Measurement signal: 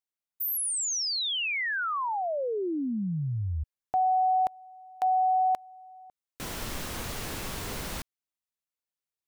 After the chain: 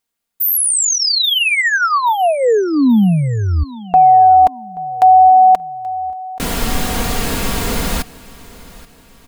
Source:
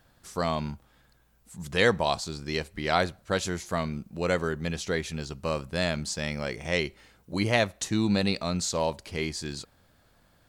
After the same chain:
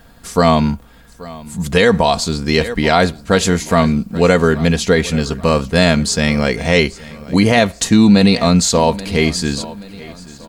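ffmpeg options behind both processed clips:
-filter_complex "[0:a]lowshelf=f=420:g=4,bandreject=f=5.7k:w=21,aecho=1:1:4.3:0.45,asplit=2[a][b];[b]aecho=0:1:830|1660|2490:0.1|0.044|0.0194[c];[a][c]amix=inputs=2:normalize=0,alimiter=level_in=15dB:limit=-1dB:release=50:level=0:latency=1,volume=-1dB"

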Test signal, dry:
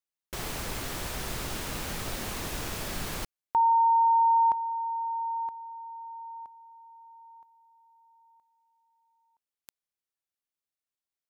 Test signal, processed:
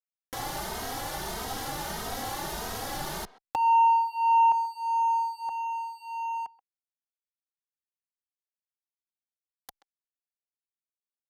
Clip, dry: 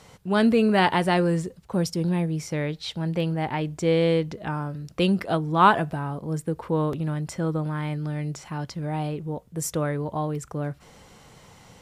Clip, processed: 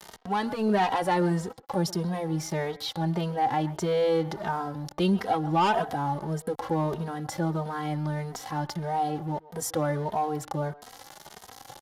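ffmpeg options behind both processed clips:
-filter_complex "[0:a]aeval=exprs='sgn(val(0))*max(abs(val(0))-0.00631,0)':c=same,acompressor=mode=upward:threshold=-30dB:ratio=2.5:attack=2.3:release=25:knee=2.83:detection=peak,equalizer=f=800:t=o:w=0.33:g=10,equalizer=f=2.5k:t=o:w=0.33:g=-9,equalizer=f=8k:t=o:w=0.33:g=-5,asplit=2[a][b];[b]adelay=130,highpass=300,lowpass=3.4k,asoftclip=type=hard:threshold=-9.5dB,volume=-19dB[c];[a][c]amix=inputs=2:normalize=0,asoftclip=type=tanh:threshold=-14dB,lowshelf=f=180:g=-6,aresample=32000,aresample=44100,acompressor=threshold=-24dB:ratio=2.5:attack=4.5:release=97,asplit=2[d][e];[e]adelay=2.9,afreqshift=1.6[f];[d][f]amix=inputs=2:normalize=1,volume=4.5dB"

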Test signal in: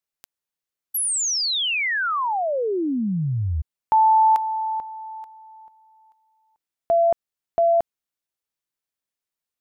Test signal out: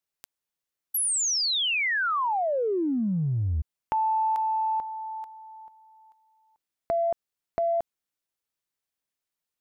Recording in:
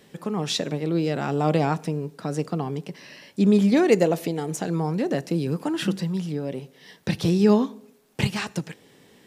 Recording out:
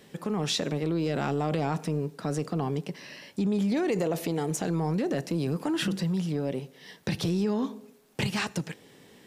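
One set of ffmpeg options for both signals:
-af "acompressor=threshold=-24dB:ratio=6:attack=2.1:release=39:knee=1:detection=peak"

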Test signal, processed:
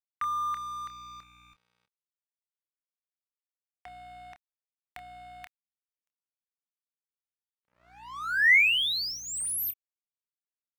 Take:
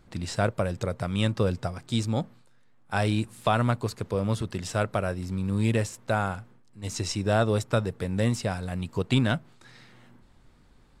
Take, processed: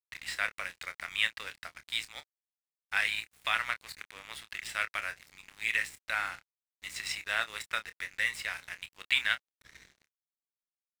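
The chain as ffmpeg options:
-filter_complex "[0:a]highpass=f=2k:t=q:w=4,equalizer=f=6.2k:w=2.6:g=-9.5,aeval=exprs='val(0)+0.00178*(sin(2*PI*60*n/s)+sin(2*PI*2*60*n/s)/2+sin(2*PI*3*60*n/s)/3+sin(2*PI*4*60*n/s)/4+sin(2*PI*5*60*n/s)/5)':c=same,aeval=exprs='sgn(val(0))*max(abs(val(0))-0.00562,0)':c=same,asplit=2[a][b];[b]adelay=27,volume=-11dB[c];[a][c]amix=inputs=2:normalize=0"

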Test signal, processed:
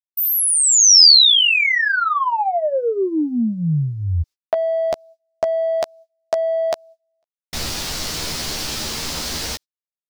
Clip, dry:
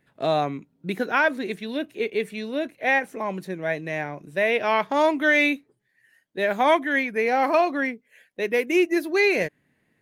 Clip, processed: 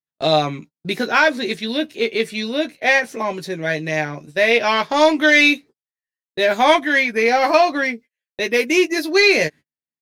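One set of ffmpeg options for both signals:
-filter_complex "[0:a]asplit=2[a][b];[b]asoftclip=type=tanh:threshold=-19dB,volume=-10dB[c];[a][c]amix=inputs=2:normalize=0,equalizer=f=4.9k:t=o:w=1.2:g=12,agate=range=-42dB:threshold=-39dB:ratio=16:detection=peak,asplit=2[d][e];[e]adelay=13,volume=-5dB[f];[d][f]amix=inputs=2:normalize=0,volume=2dB"

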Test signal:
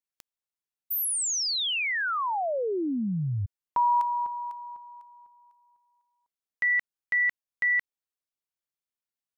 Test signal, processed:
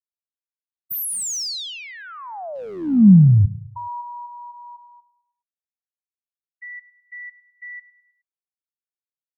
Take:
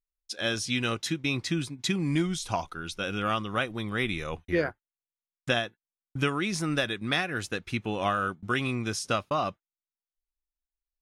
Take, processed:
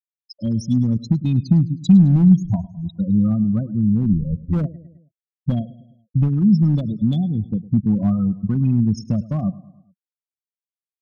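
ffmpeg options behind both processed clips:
-filter_complex "[0:a]acrossover=split=680|4100[a][b][c];[b]acompressor=threshold=-40dB:ratio=8:attack=0.34:release=458:knee=1:detection=peak[d];[a][d][c]amix=inputs=3:normalize=0,afftfilt=real='re*gte(hypot(re,im),0.0631)':imag='im*gte(hypot(re,im),0.0631)':win_size=1024:overlap=0.75,aecho=1:1:105|210|315|420:0.119|0.0606|0.0309|0.0158,volume=26dB,asoftclip=hard,volume=-26dB,lowshelf=f=280:t=q:w=3:g=11.5,volume=2.5dB"

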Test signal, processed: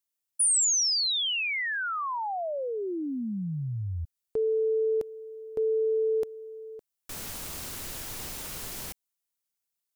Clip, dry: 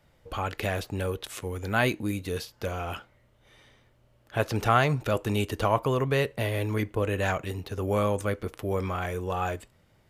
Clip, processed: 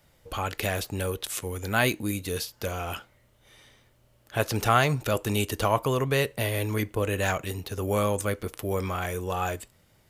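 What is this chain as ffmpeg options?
-af "highshelf=f=4.7k:g=11"

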